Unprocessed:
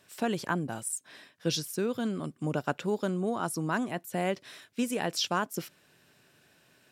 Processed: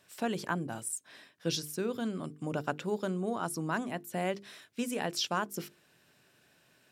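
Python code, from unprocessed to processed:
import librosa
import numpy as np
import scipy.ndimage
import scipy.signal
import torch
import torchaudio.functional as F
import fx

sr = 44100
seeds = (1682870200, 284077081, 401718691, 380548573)

y = fx.hum_notches(x, sr, base_hz=50, count=9)
y = y * librosa.db_to_amplitude(-2.5)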